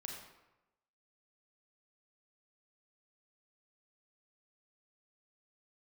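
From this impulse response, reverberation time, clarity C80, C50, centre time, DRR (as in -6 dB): 1.0 s, 5.0 dB, 2.5 dB, 49 ms, -0.5 dB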